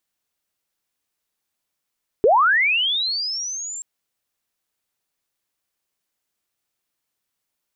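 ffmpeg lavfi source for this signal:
ffmpeg -f lavfi -i "aevalsrc='pow(10,(-10.5-18.5*t/1.58)/20)*sin(2*PI*(380*t+7120*t*t/(2*1.58)))':duration=1.58:sample_rate=44100" out.wav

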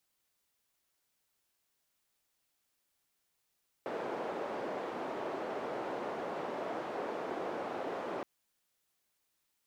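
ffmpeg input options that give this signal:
ffmpeg -f lavfi -i "anoisesrc=color=white:duration=4.37:sample_rate=44100:seed=1,highpass=frequency=420,lowpass=frequency=540,volume=-13.5dB" out.wav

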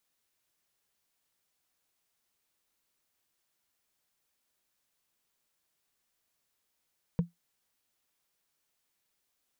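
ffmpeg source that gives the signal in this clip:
ffmpeg -f lavfi -i "aevalsrc='0.112*pow(10,-3*t/0.15)*sin(2*PI*171*t)+0.0355*pow(10,-3*t/0.044)*sin(2*PI*471.4*t)+0.0112*pow(10,-3*t/0.02)*sin(2*PI*924.1*t)+0.00355*pow(10,-3*t/0.011)*sin(2*PI*1527.5*t)+0.00112*pow(10,-3*t/0.007)*sin(2*PI*2281.1*t)':duration=0.45:sample_rate=44100" out.wav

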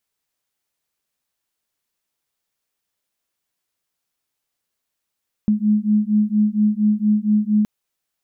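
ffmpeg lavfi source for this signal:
ffmpeg -f lavfi -i "aevalsrc='0.133*(sin(2*PI*209*t)+sin(2*PI*213.3*t))':duration=2.17:sample_rate=44100" out.wav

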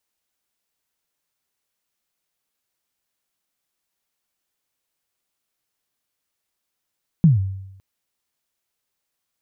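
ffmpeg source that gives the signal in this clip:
ffmpeg -f lavfi -i "aevalsrc='0.447*pow(10,-3*t/0.87)*sin(2*PI*(180*0.147/log(96/180)*(exp(log(96/180)*min(t,0.147)/0.147)-1)+96*max(t-0.147,0)))':duration=0.56:sample_rate=44100" out.wav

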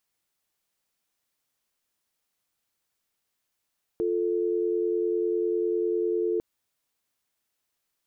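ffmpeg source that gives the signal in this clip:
ffmpeg -f lavfi -i "aevalsrc='0.0501*(sin(2*PI*350*t)+sin(2*PI*440*t))':duration=2.4:sample_rate=44100" out.wav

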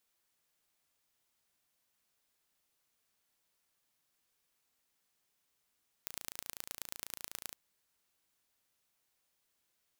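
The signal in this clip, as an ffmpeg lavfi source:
ffmpeg -f lavfi -i "aevalsrc='0.266*eq(mod(n,1569),0)*(0.5+0.5*eq(mod(n,4707),0))':duration=1.46:sample_rate=44100" out.wav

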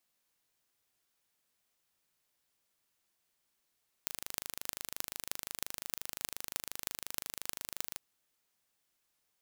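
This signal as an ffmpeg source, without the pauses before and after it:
ffmpeg -f lavfi -i "aevalsrc='0.501*eq(mod(n,1716),0)*(0.5+0.5*eq(mod(n,13728),0))':duration=3.93:sample_rate=44100" out.wav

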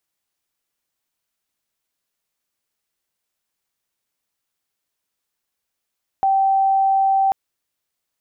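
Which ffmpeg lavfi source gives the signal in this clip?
ffmpeg -f lavfi -i "aevalsrc='0.211*sin(2*PI*777*t)':duration=1.09:sample_rate=44100" out.wav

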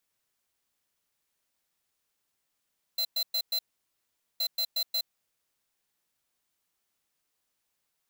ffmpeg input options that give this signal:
ffmpeg -f lavfi -i "aevalsrc='0.0376*(2*lt(mod(4070*t,1),0.5)-1)*clip(min(mod(mod(t,1.42),0.18),0.07-mod(mod(t,1.42),0.18))/0.005,0,1)*lt(mod(t,1.42),0.72)':duration=2.84:sample_rate=44100" out.wav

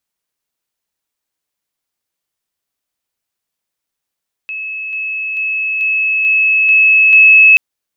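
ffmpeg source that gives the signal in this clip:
ffmpeg -f lavfi -i "aevalsrc='pow(10,(-20.5+3*floor(t/0.44))/20)*sin(2*PI*2590*t)':duration=3.08:sample_rate=44100" out.wav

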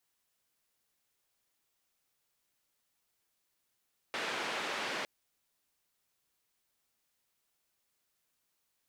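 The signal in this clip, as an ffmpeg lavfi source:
ffmpeg -f lavfi -i "anoisesrc=color=white:duration=0.91:sample_rate=44100:seed=1,highpass=frequency=270,lowpass=frequency=2600,volume=-22.8dB" out.wav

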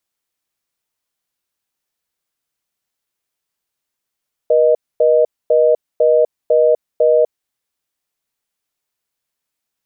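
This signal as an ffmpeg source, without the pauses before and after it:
ffmpeg -f lavfi -i "aevalsrc='0.266*(sin(2*PI*480*t)+sin(2*PI*620*t))*clip(min(mod(t,0.5),0.25-mod(t,0.5))/0.005,0,1)':duration=2.77:sample_rate=44100" out.wav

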